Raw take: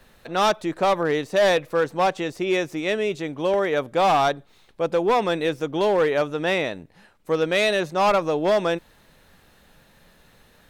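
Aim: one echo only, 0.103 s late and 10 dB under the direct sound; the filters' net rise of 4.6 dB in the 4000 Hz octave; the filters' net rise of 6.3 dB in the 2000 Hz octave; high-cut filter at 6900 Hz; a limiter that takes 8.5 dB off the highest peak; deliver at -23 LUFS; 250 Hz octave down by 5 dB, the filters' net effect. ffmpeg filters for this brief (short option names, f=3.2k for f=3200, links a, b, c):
-af "lowpass=6.9k,equalizer=f=250:t=o:g=-8.5,equalizer=f=2k:t=o:g=7,equalizer=f=4k:t=o:g=3.5,alimiter=limit=-14.5dB:level=0:latency=1,aecho=1:1:103:0.316,volume=2dB"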